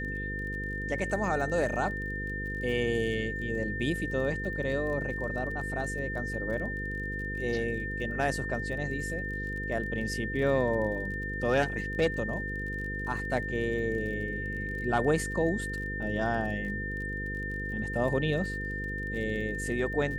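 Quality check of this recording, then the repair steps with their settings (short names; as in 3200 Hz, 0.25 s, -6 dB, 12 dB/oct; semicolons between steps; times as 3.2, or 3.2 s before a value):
buzz 50 Hz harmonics 10 -37 dBFS
crackle 30/s -39 dBFS
tone 1800 Hz -35 dBFS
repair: de-click; de-hum 50 Hz, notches 10; notch 1800 Hz, Q 30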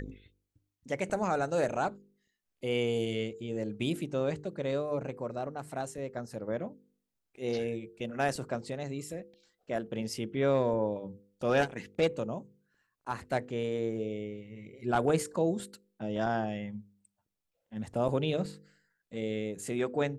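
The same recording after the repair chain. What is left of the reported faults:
none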